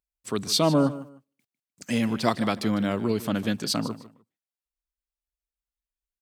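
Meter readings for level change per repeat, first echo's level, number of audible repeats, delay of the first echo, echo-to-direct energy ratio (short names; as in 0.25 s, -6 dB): -12.5 dB, -16.0 dB, 2, 0.152 s, -16.0 dB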